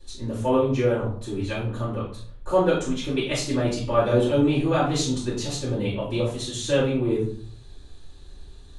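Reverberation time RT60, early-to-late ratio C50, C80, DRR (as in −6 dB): 0.55 s, 4.5 dB, 9.0 dB, −11.5 dB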